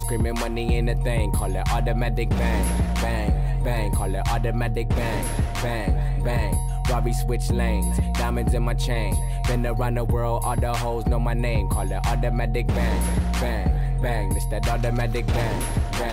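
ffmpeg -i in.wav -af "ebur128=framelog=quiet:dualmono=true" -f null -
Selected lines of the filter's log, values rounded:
Integrated loudness:
  I:         -21.3 LUFS
  Threshold: -31.3 LUFS
Loudness range:
  LRA:         0.9 LU
  Threshold: -41.3 LUFS
  LRA low:   -21.7 LUFS
  LRA high:  -20.9 LUFS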